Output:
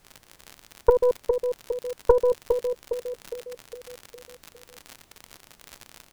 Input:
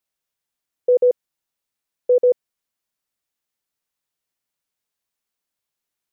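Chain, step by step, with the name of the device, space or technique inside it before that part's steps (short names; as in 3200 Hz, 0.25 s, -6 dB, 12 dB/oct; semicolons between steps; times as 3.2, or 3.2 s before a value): treble ducked by the level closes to 310 Hz, closed at -15.5 dBFS; feedback echo 0.409 s, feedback 51%, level -6 dB; record under a worn stylus (tracing distortion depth 0.25 ms; crackle 77/s -30 dBFS; pink noise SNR 31 dB); gain +3.5 dB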